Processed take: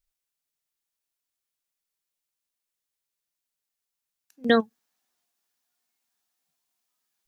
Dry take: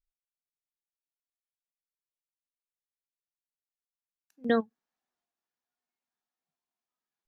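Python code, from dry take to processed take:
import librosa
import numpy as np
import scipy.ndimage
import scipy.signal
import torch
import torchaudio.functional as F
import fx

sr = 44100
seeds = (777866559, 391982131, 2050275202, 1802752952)

y = fx.high_shelf(x, sr, hz=2700.0, db=fx.steps((0.0, 6.0), (4.43, 11.5)))
y = y * librosa.db_to_amplitude(5.0)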